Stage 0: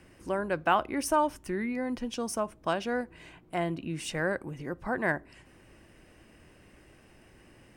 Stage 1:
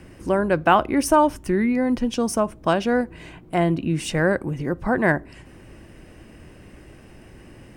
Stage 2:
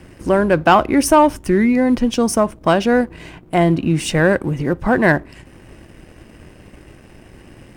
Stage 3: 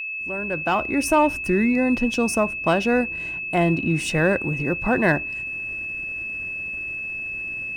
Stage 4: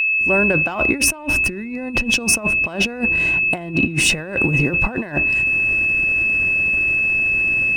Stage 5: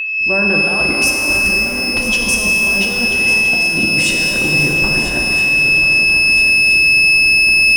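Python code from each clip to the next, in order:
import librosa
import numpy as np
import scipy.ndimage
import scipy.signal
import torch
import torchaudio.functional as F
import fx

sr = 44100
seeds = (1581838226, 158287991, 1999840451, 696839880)

y1 = fx.low_shelf(x, sr, hz=470.0, db=6.5)
y1 = y1 * librosa.db_to_amplitude(7.0)
y2 = fx.leveller(y1, sr, passes=1)
y2 = y2 * librosa.db_to_amplitude(2.5)
y3 = fx.fade_in_head(y2, sr, length_s=1.33)
y3 = y3 + 10.0 ** (-22.0 / 20.0) * np.sin(2.0 * np.pi * 2600.0 * np.arange(len(y3)) / sr)
y3 = y3 * librosa.db_to_amplitude(-5.5)
y4 = fx.over_compress(y3, sr, threshold_db=-26.0, ratio=-0.5)
y4 = y4 * librosa.db_to_amplitude(8.5)
y5 = fx.echo_swing(y4, sr, ms=1322, ratio=3, feedback_pct=49, wet_db=-11)
y5 = fx.rev_shimmer(y5, sr, seeds[0], rt60_s=3.0, semitones=12, shimmer_db=-8, drr_db=0.0)
y5 = y5 * librosa.db_to_amplitude(-3.0)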